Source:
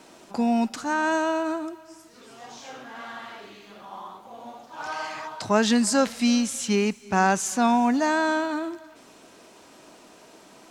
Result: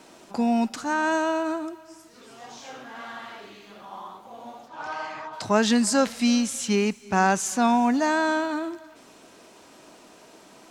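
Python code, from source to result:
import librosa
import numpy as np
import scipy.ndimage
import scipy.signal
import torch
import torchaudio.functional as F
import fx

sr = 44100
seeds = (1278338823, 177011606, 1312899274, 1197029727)

y = fx.lowpass(x, sr, hz=fx.line((4.67, 3700.0), (5.32, 1900.0)), slope=6, at=(4.67, 5.32), fade=0.02)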